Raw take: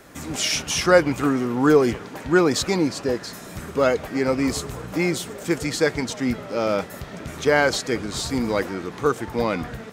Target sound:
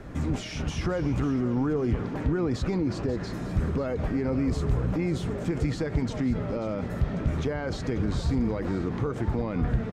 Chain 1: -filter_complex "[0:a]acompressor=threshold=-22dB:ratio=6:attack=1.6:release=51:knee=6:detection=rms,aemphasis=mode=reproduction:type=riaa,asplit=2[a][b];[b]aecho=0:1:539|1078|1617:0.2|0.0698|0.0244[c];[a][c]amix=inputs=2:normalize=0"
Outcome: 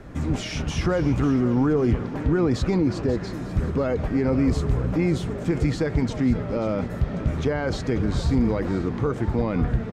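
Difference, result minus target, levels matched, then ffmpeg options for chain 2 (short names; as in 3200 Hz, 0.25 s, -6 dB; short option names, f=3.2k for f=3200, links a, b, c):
compressor: peak gain reduction -6 dB
-filter_complex "[0:a]acompressor=threshold=-29dB:ratio=6:attack=1.6:release=51:knee=6:detection=rms,aemphasis=mode=reproduction:type=riaa,asplit=2[a][b];[b]aecho=0:1:539|1078|1617:0.2|0.0698|0.0244[c];[a][c]amix=inputs=2:normalize=0"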